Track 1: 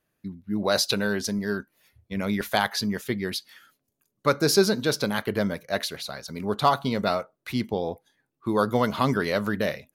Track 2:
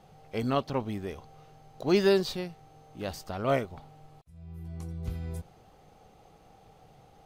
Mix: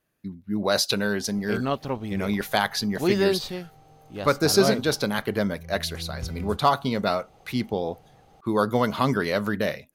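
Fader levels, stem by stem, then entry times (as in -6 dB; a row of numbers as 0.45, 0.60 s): +0.5, +1.5 dB; 0.00, 1.15 s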